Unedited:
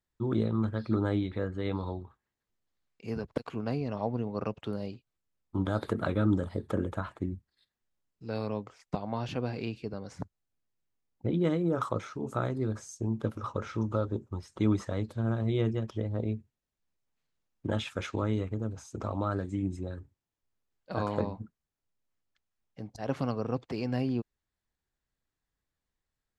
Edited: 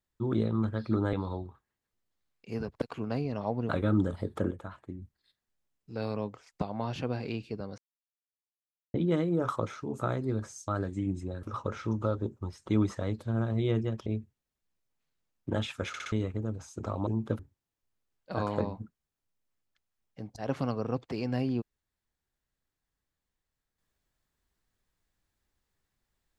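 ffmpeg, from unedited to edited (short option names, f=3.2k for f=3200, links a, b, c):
-filter_complex "[0:a]asplit=16[a][b][c][d][e][f][g][h][i][j][k][l][m][n][o][p];[a]atrim=end=1.132[q];[b]atrim=start=1.688:end=4.252[r];[c]atrim=start=6.018:end=6.842[s];[d]atrim=start=6.838:end=7.352,asetpts=PTS-STARTPTS,volume=-8dB[t];[e]atrim=start=7.348:end=10.11,asetpts=PTS-STARTPTS,afade=t=out:st=2.758:d=0.004:c=hsin[u];[f]atrim=start=10.11:end=11.27,asetpts=PTS-STARTPTS,volume=0[v];[g]atrim=start=11.27:end=13.012,asetpts=PTS-STARTPTS,afade=t=in:d=0.004:c=hsin[w];[h]atrim=start=19.238:end=19.992[x];[i]atrim=start=13.328:end=15.962[y];[j]atrim=start=16.228:end=18.112[z];[k]atrim=start=18.048:end=18.112[aa];[l]atrim=start=18.048:end=18.112[ab];[m]atrim=start=18.048:end=18.112[ac];[n]atrim=start=18.288:end=19.242[ad];[o]atrim=start=13.008:end=13.332[ae];[p]atrim=start=19.988[af];[q][r]acrossfade=d=0.004:c1=hsin:c2=hsin[ag];[ag][s]acrossfade=d=0.004:c1=hsin:c2=hsin[ah];[ah][t]acrossfade=d=0.004:c1=hsin:c2=hsin[ai];[u][v][w]concat=n=3:v=0:a=1[aj];[ai][aj]acrossfade=d=0.004:c1=hsin:c2=hsin[ak];[ak][x]acrossfade=d=0.004:c1=hsin:c2=hsin[al];[al][y]acrossfade=d=0.004:c1=hsin:c2=hsin[am];[am][z]acrossfade=d=0.004:c1=hsin:c2=hsin[an];[an][aa]acrossfade=d=0.004:c1=hsin:c2=hsin[ao];[ao][ab]acrossfade=d=0.004:c1=hsin:c2=hsin[ap];[ap][ac]acrossfade=d=0.004:c1=hsin:c2=hsin[aq];[aq][ad]acrossfade=d=0.004:c1=hsin:c2=hsin[ar];[ar][ae]acrossfade=d=0.004:c1=hsin:c2=hsin[as];[as][af]acrossfade=d=0.004:c1=hsin:c2=hsin"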